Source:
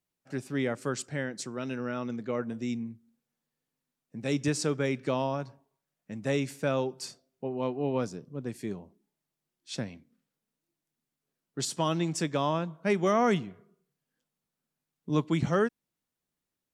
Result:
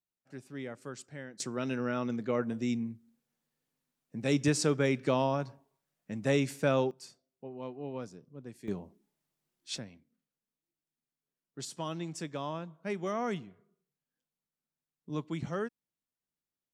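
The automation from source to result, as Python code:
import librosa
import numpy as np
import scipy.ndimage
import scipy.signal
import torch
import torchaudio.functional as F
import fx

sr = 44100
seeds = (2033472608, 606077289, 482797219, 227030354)

y = fx.gain(x, sr, db=fx.steps((0.0, -11.0), (1.4, 1.0), (6.91, -10.0), (8.68, 1.5), (9.78, -9.0)))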